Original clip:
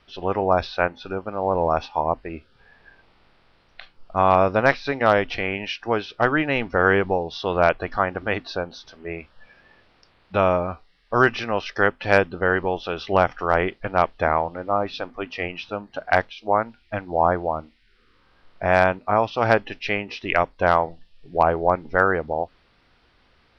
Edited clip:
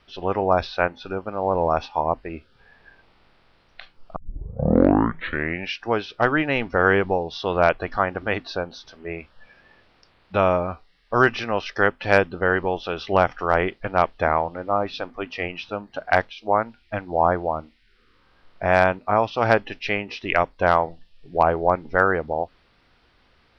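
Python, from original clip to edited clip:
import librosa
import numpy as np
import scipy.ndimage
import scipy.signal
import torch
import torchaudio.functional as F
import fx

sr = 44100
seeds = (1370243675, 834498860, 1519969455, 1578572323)

y = fx.edit(x, sr, fx.tape_start(start_s=4.16, length_s=1.58), tone=tone)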